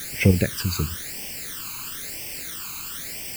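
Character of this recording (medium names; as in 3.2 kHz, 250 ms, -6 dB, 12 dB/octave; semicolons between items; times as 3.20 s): tremolo saw up 3.2 Hz, depth 50%; a quantiser's noise floor 6-bit, dither triangular; phasing stages 12, 1 Hz, lowest notch 580–1300 Hz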